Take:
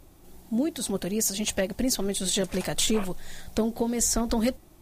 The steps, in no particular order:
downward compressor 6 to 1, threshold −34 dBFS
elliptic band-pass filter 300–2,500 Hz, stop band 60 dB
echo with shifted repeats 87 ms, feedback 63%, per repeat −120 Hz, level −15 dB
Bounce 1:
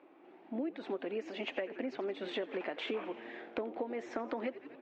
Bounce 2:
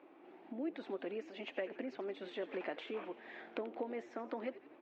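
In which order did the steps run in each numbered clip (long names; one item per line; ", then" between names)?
echo with shifted repeats, then elliptic band-pass filter, then downward compressor
downward compressor, then echo with shifted repeats, then elliptic band-pass filter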